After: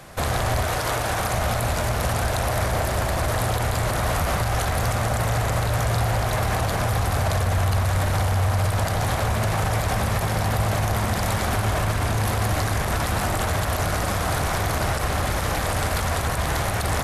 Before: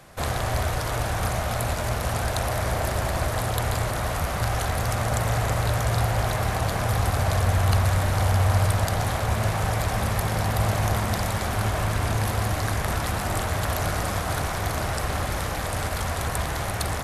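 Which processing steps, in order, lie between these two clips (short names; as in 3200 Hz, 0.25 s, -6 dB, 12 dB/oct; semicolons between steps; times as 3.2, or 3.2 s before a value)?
0.65–1.34 low shelf 160 Hz -8.5 dB; limiter -20 dBFS, peak gain reduction 11.5 dB; gain +6 dB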